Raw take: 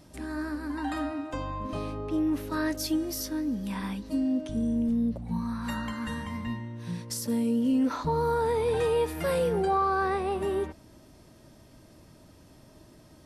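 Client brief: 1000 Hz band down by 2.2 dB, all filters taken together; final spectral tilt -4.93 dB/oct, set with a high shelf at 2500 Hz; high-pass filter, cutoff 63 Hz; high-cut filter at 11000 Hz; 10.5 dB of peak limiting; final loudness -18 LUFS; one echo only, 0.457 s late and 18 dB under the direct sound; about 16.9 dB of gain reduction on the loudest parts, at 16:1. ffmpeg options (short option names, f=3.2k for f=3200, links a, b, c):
-af "highpass=63,lowpass=11k,equalizer=f=1k:t=o:g=-4,highshelf=f=2.5k:g=7.5,acompressor=threshold=-40dB:ratio=16,alimiter=level_in=13dB:limit=-24dB:level=0:latency=1,volume=-13dB,aecho=1:1:457:0.126,volume=27.5dB"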